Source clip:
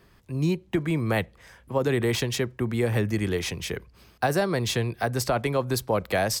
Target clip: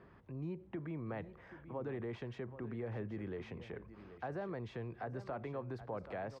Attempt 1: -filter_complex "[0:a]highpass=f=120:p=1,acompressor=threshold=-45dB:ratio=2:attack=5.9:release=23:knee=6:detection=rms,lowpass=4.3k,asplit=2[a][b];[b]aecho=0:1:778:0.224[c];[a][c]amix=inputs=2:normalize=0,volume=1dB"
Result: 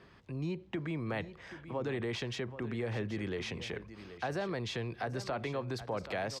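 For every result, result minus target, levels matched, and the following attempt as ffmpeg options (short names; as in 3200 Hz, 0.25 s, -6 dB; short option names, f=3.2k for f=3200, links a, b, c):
4000 Hz band +12.5 dB; compressor: peak gain reduction -5.5 dB
-filter_complex "[0:a]highpass=f=120:p=1,acompressor=threshold=-45dB:ratio=2:attack=5.9:release=23:knee=6:detection=rms,lowpass=1.5k,asplit=2[a][b];[b]aecho=0:1:778:0.224[c];[a][c]amix=inputs=2:normalize=0,volume=1dB"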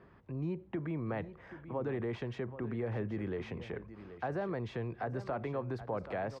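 compressor: peak gain reduction -5.5 dB
-filter_complex "[0:a]highpass=f=120:p=1,acompressor=threshold=-56dB:ratio=2:attack=5.9:release=23:knee=6:detection=rms,lowpass=1.5k,asplit=2[a][b];[b]aecho=0:1:778:0.224[c];[a][c]amix=inputs=2:normalize=0,volume=1dB"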